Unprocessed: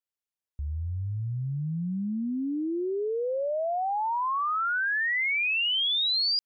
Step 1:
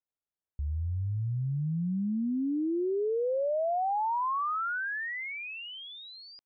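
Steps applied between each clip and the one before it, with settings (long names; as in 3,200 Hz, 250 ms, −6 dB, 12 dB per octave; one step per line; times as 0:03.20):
low-pass filter 1,200 Hz 12 dB per octave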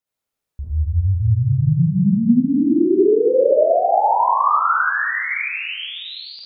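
convolution reverb RT60 1.6 s, pre-delay 40 ms, DRR −7 dB
level +6 dB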